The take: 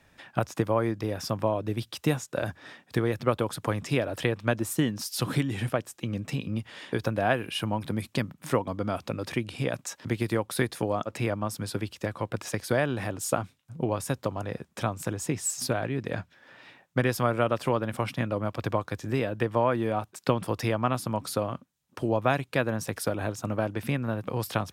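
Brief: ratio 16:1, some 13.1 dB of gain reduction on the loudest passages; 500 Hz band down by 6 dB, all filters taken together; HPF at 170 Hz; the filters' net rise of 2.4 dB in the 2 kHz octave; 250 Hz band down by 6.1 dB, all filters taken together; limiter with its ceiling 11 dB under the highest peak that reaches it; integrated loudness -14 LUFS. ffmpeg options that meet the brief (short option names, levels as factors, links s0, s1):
-af "highpass=170,equalizer=f=250:t=o:g=-4.5,equalizer=f=500:t=o:g=-6.5,equalizer=f=2000:t=o:g=3.5,acompressor=threshold=0.0178:ratio=16,volume=25.1,alimiter=limit=0.891:level=0:latency=1"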